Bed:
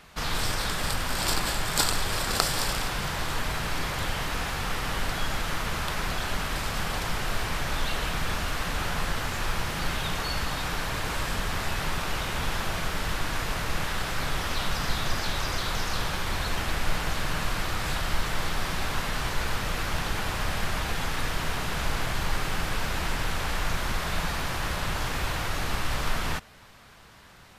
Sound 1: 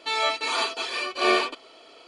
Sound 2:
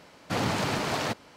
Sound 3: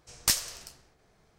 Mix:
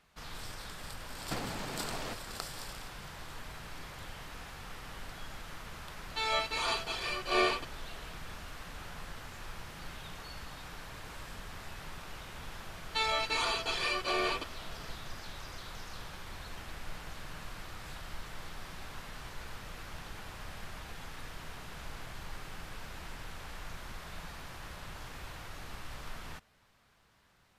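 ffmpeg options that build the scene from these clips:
-filter_complex "[1:a]asplit=2[s0][s1];[0:a]volume=0.158[s2];[2:a]acompressor=threshold=0.0141:ratio=5:attack=45:release=721:knee=1:detection=peak[s3];[s1]alimiter=limit=0.112:level=0:latency=1:release=71[s4];[s3]atrim=end=1.36,asetpts=PTS-STARTPTS,volume=0.794,afade=t=in:d=0.004:c=hsin,afade=t=out:st=1.356:d=0.004:c=hsin,adelay=1010[s5];[s0]atrim=end=2.07,asetpts=PTS-STARTPTS,volume=0.447,afade=t=in:d=0.004:c=hsin,afade=t=out:st=2.066:d=0.004:c=hsin,adelay=269010S[s6];[s4]atrim=end=2.07,asetpts=PTS-STARTPTS,volume=0.708,afade=t=in:d=0.004:c=hsin,afade=t=out:st=2.066:d=0.004:c=hsin,adelay=12890[s7];[s2][s5][s6][s7]amix=inputs=4:normalize=0"

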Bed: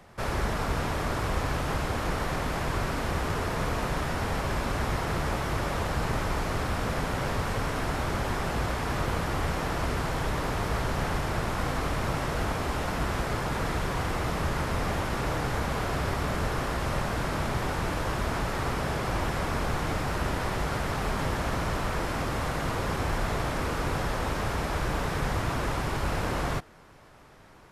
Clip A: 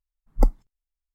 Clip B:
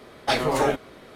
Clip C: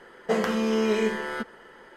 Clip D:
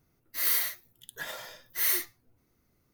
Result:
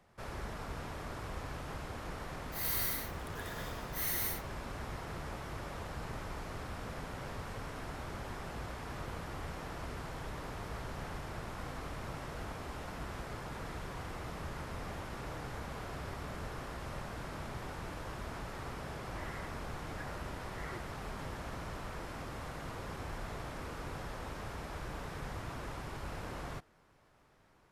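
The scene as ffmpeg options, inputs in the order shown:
-filter_complex "[4:a]asplit=2[s0][s1];[0:a]volume=0.211[s2];[s0]aecho=1:1:125.4|189.5:0.708|0.794[s3];[s1]lowpass=f=1700:w=0.5412,lowpass=f=1700:w=1.3066[s4];[s3]atrim=end=2.93,asetpts=PTS-STARTPTS,volume=0.299,afade=t=in:d=0.004:c=hsin,afade=t=out:st=2.926:d=0.004:c=hsin,adelay=2180[s5];[s4]atrim=end=2.93,asetpts=PTS-STARTPTS,volume=0.422,afade=t=in:d=0.004:c=hsin,afade=t=out:st=2.926:d=0.004:c=hsin,adelay=18790[s6];[s2][s5][s6]amix=inputs=3:normalize=0"

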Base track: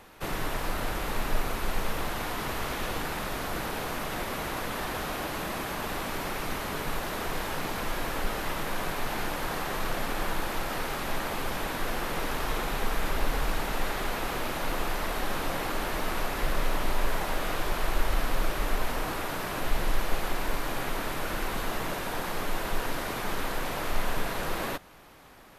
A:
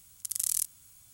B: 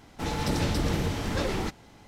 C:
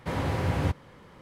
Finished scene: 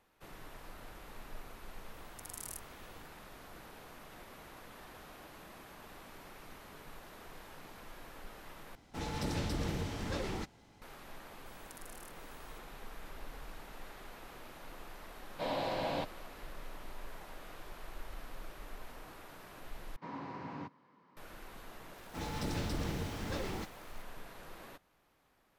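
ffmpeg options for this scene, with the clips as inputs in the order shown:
-filter_complex "[1:a]asplit=2[s0][s1];[2:a]asplit=2[s2][s3];[3:a]asplit=2[s4][s5];[0:a]volume=0.106[s6];[s0]tiltshelf=f=970:g=9[s7];[s1]acompressor=threshold=0.00794:ratio=6:attack=3.2:release=140:knee=1:detection=peak[s8];[s4]highpass=330,equalizer=f=410:t=q:w=4:g=-9,equalizer=f=630:t=q:w=4:g=8,equalizer=f=1300:t=q:w=4:g=-9,equalizer=f=1900:t=q:w=4:g=-7,equalizer=f=4000:t=q:w=4:g=7,equalizer=f=6200:t=q:w=4:g=-8,lowpass=f=6900:w=0.5412,lowpass=f=6900:w=1.3066[s9];[s5]highpass=f=150:w=0.5412,highpass=f=150:w=1.3066,equalizer=f=270:t=q:w=4:g=7,equalizer=f=540:t=q:w=4:g=-4,equalizer=f=1000:t=q:w=4:g=10,equalizer=f=3300:t=q:w=4:g=-6,lowpass=f=5400:w=0.5412,lowpass=f=5400:w=1.3066[s10];[s3]acrusher=bits=7:mix=0:aa=0.000001[s11];[s6]asplit=3[s12][s13][s14];[s12]atrim=end=8.754[s15];[s2]atrim=end=2.07,asetpts=PTS-STARTPTS,volume=0.355[s16];[s13]atrim=start=10.816:end=19.964[s17];[s10]atrim=end=1.21,asetpts=PTS-STARTPTS,volume=0.158[s18];[s14]atrim=start=21.166[s19];[s7]atrim=end=1.13,asetpts=PTS-STARTPTS,volume=0.422,afade=t=in:d=0.004:c=hsin,afade=t=out:st=1.126:d=0.004:c=hsin,adelay=1940[s20];[s8]atrim=end=1.13,asetpts=PTS-STARTPTS,volume=0.335,afade=t=in:d=0.004:c=hsin,afade=t=out:st=1.126:d=0.004:c=hsin,adelay=505386S[s21];[s9]atrim=end=1.21,asetpts=PTS-STARTPTS,volume=0.75,afade=t=in:d=0.1,afade=t=out:st=1.11:d=0.1,adelay=15330[s22];[s11]atrim=end=2.07,asetpts=PTS-STARTPTS,volume=0.316,afade=t=in:d=0.004:c=hsin,afade=t=out:st=2.066:d=0.004:c=hsin,adelay=21950[s23];[s15][s16]acrossfade=d=0.004:c1=hsin:c2=hsin[s24];[s24][s17]acrossfade=d=0.004:c1=hsin:c2=hsin[s25];[s25][s18]acrossfade=d=0.004:c1=hsin:c2=hsin[s26];[s26][s19]acrossfade=d=0.004:c1=hsin:c2=hsin[s27];[s27][s20][s21][s22][s23]amix=inputs=5:normalize=0"

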